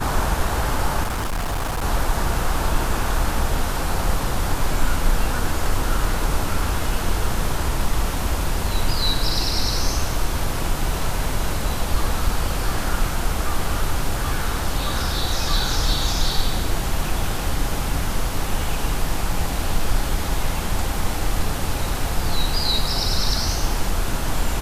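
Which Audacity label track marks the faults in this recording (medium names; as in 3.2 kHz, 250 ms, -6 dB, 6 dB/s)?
1.030000	1.830000	clipped -20.5 dBFS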